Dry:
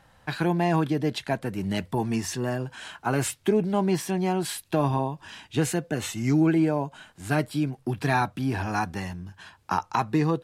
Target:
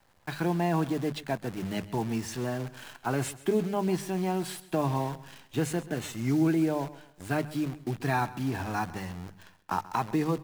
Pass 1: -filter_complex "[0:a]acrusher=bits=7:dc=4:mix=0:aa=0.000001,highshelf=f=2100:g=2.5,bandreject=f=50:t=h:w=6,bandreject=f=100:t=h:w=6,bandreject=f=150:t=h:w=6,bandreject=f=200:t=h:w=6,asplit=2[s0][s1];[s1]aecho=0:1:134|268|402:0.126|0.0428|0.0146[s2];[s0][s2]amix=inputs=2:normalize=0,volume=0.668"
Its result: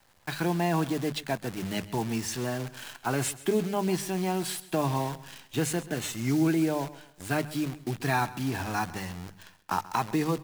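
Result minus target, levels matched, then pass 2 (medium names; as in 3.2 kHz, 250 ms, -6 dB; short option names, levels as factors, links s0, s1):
4 kHz band +4.0 dB
-filter_complex "[0:a]acrusher=bits=7:dc=4:mix=0:aa=0.000001,highshelf=f=2100:g=-4,bandreject=f=50:t=h:w=6,bandreject=f=100:t=h:w=6,bandreject=f=150:t=h:w=6,bandreject=f=200:t=h:w=6,asplit=2[s0][s1];[s1]aecho=0:1:134|268|402:0.126|0.0428|0.0146[s2];[s0][s2]amix=inputs=2:normalize=0,volume=0.668"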